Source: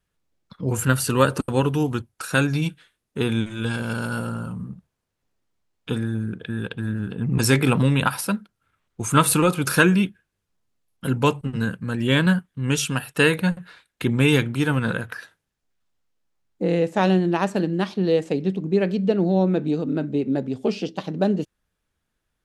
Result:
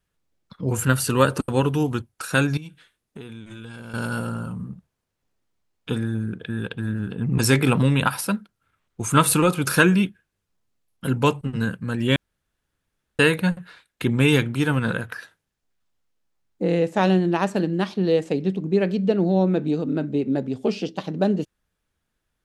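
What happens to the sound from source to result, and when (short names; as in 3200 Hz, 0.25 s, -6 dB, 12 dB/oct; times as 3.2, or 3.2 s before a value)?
2.57–3.94 compressor 12:1, threshold -34 dBFS
12.16–13.19 room tone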